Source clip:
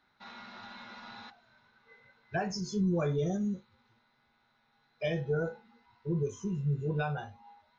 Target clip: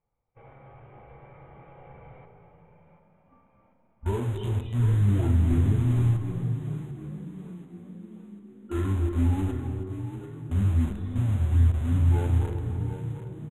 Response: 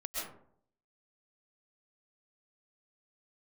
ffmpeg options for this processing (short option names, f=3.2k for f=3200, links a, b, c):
-filter_complex "[0:a]agate=range=-11dB:threshold=-58dB:ratio=16:detection=peak,aemphasis=mode=reproduction:type=riaa,asplit=2[a][b];[b]acrusher=bits=4:mix=0:aa=0.000001,volume=-8dB[c];[a][c]amix=inputs=2:normalize=0,asoftclip=type=tanh:threshold=-12dB,asplit=6[d][e][f][g][h][i];[e]adelay=428,afreqshift=53,volume=-11dB[j];[f]adelay=856,afreqshift=106,volume=-17.2dB[k];[g]adelay=1284,afreqshift=159,volume=-23.4dB[l];[h]adelay=1712,afreqshift=212,volume=-29.6dB[m];[i]adelay=2140,afreqshift=265,volume=-35.8dB[n];[d][j][k][l][m][n]amix=inputs=6:normalize=0,asplit=2[o][p];[1:a]atrim=start_sample=2205,highshelf=f=4.9k:g=-8,adelay=34[q];[p][q]afir=irnorm=-1:irlink=0,volume=-7.5dB[r];[o][r]amix=inputs=2:normalize=0,asetrate=25442,aresample=44100,asuperstop=centerf=5000:order=8:qfactor=1.9,volume=-3dB"